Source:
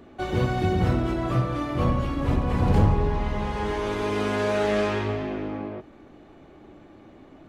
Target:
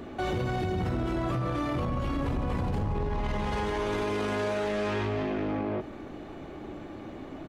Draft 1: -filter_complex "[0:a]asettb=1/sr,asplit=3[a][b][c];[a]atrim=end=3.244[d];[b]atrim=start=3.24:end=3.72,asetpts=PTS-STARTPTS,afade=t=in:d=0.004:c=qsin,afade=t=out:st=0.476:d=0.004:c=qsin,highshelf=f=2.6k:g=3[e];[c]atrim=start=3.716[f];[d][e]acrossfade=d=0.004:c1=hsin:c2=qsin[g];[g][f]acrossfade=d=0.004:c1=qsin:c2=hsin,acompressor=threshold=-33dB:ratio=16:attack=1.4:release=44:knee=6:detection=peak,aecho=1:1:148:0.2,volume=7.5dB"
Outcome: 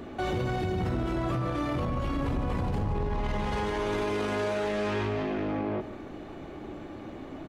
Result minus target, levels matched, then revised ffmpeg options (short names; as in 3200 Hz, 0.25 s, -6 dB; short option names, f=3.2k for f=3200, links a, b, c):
echo-to-direct +9 dB
-filter_complex "[0:a]asettb=1/sr,asplit=3[a][b][c];[a]atrim=end=3.244[d];[b]atrim=start=3.24:end=3.72,asetpts=PTS-STARTPTS,afade=t=in:d=0.004:c=qsin,afade=t=out:st=0.476:d=0.004:c=qsin,highshelf=f=2.6k:g=3[e];[c]atrim=start=3.716[f];[d][e]acrossfade=d=0.004:c1=hsin:c2=qsin[g];[g][f]acrossfade=d=0.004:c1=qsin:c2=hsin,acompressor=threshold=-33dB:ratio=16:attack=1.4:release=44:knee=6:detection=peak,aecho=1:1:148:0.0708,volume=7.5dB"